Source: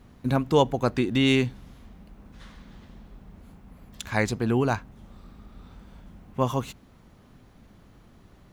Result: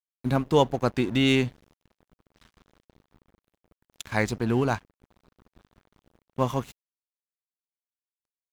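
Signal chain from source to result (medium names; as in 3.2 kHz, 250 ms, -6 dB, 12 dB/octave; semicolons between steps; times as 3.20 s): crossover distortion -41.5 dBFS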